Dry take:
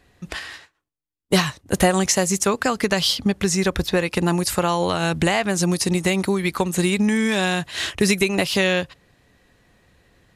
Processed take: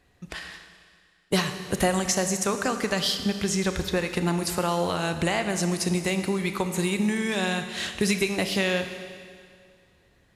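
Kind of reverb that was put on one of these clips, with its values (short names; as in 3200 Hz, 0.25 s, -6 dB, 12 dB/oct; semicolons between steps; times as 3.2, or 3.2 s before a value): Schroeder reverb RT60 2.1 s, combs from 27 ms, DRR 7.5 dB; gain -6 dB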